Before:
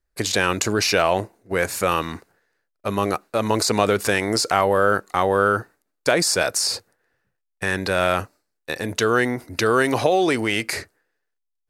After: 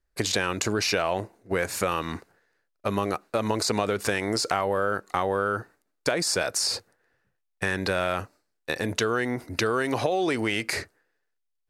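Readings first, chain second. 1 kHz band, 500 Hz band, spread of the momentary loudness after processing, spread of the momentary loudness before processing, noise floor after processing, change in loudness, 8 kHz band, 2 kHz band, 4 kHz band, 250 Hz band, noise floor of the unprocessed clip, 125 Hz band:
−6.5 dB, −6.0 dB, 8 LU, 9 LU, −77 dBFS, −6.0 dB, −5.0 dB, −6.0 dB, −4.5 dB, −5.0 dB, −77 dBFS, −4.5 dB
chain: high-shelf EQ 9,800 Hz −6.5 dB
downward compressor 4 to 1, threshold −22 dBFS, peak gain reduction 8.5 dB

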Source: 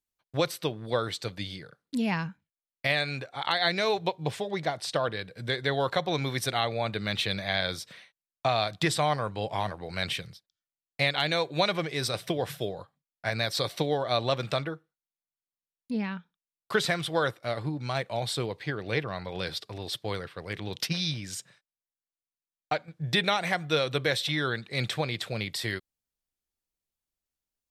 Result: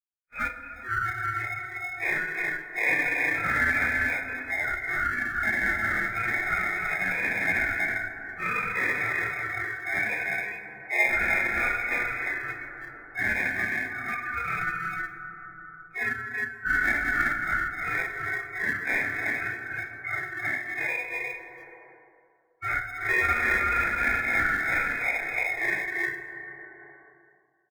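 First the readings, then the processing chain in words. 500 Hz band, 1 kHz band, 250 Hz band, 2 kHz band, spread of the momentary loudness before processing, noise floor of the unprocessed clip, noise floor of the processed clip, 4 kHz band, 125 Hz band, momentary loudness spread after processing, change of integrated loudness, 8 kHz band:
−9.5 dB, +0.5 dB, −6.0 dB, +10.0 dB, 9 LU, below −85 dBFS, −57 dBFS, −16.5 dB, −8.5 dB, 11 LU, +3.0 dB, −7.0 dB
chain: random phases in long frames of 200 ms
linear-phase brick-wall band-pass 1,200–2,500 Hz
comb filter 2.8 ms, depth 50%
on a send: multi-tap delay 123/190/194/320/353 ms −12/−18/−11/−6.5/−6.5 dB
on the sum: downward expander −52 dBFS
in parallel at −10 dB: decimation without filtering 30×
on the sum: noise reduction from a noise print of the clip's start 26 dB
dense smooth reverb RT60 2.1 s, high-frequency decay 0.35×, DRR 8.5 dB
multiband upward and downward compressor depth 70%
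level +7 dB

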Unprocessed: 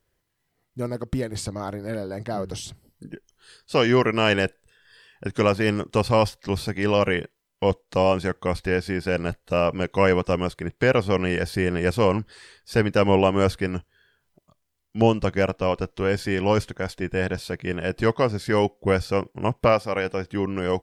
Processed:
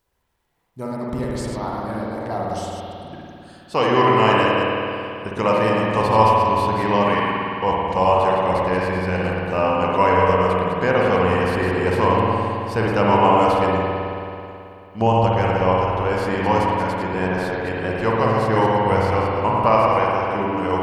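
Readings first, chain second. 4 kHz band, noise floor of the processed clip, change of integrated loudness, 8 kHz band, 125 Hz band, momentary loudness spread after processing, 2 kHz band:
+1.0 dB, −43 dBFS, +4.5 dB, can't be measured, +3.0 dB, 12 LU, +3.0 dB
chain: delay that plays each chunk backwards 122 ms, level −6 dB
parametric band 930 Hz +11.5 dB 0.65 octaves
bit reduction 12 bits
spring reverb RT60 2.8 s, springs 54 ms, chirp 65 ms, DRR −3.5 dB
level −4 dB

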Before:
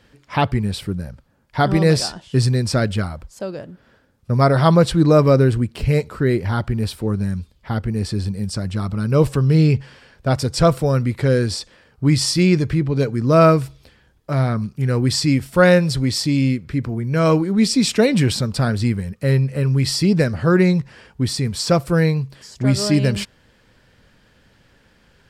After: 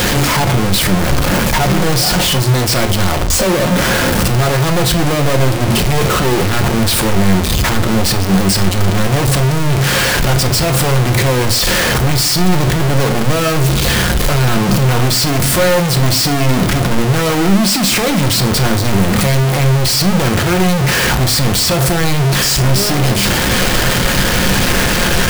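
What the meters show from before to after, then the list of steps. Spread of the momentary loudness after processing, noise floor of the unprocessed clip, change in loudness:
2 LU, −56 dBFS, +5.5 dB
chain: sign of each sample alone
rectangular room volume 360 cubic metres, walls furnished, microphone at 0.94 metres
level +4 dB

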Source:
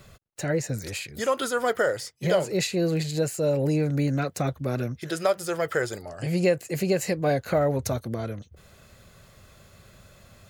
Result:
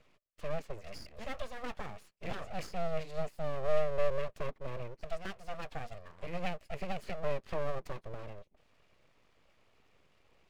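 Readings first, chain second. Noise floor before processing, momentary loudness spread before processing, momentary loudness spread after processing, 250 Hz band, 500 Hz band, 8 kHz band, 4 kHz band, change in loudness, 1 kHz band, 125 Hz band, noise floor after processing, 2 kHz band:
−55 dBFS, 8 LU, 14 LU, −19.0 dB, −12.0 dB, below −20 dB, −14.5 dB, −13.0 dB, −9.5 dB, −16.5 dB, −69 dBFS, −13.5 dB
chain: formant filter u
full-wave rectification
level +5 dB

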